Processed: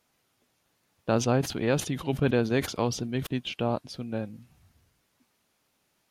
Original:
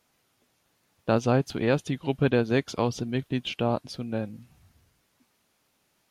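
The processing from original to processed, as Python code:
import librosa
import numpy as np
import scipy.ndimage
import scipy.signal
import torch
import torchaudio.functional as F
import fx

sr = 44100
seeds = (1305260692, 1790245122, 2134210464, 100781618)

y = fx.sustainer(x, sr, db_per_s=110.0, at=(1.13, 3.27))
y = y * 10.0 ** (-2.0 / 20.0)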